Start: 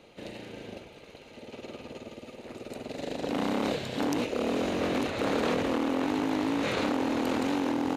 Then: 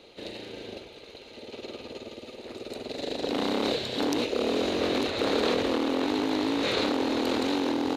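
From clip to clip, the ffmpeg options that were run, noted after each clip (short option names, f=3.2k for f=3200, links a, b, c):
-af "equalizer=f=160:t=o:w=0.67:g=-6,equalizer=f=400:t=o:w=0.67:g=5,equalizer=f=4k:t=o:w=0.67:g=10"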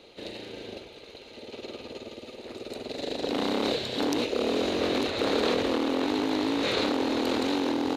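-af anull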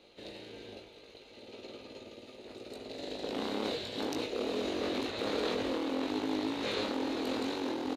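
-filter_complex "[0:a]asplit=2[a][b];[b]adelay=19,volume=-5dB[c];[a][c]amix=inputs=2:normalize=0,volume=-8.5dB"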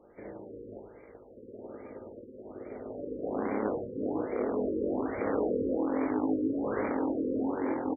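-af "aecho=1:1:75:0.398,afftfilt=real='re*lt(b*sr/1024,540*pow(2400/540,0.5+0.5*sin(2*PI*1.2*pts/sr)))':imag='im*lt(b*sr/1024,540*pow(2400/540,0.5+0.5*sin(2*PI*1.2*pts/sr)))':win_size=1024:overlap=0.75,volume=3.5dB"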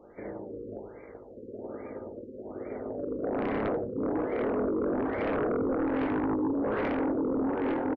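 -af "aresample=16000,aeval=exprs='0.168*sin(PI/2*3.16*val(0)/0.168)':c=same,aresample=44100,aecho=1:1:85:0.0841,volume=-9dB"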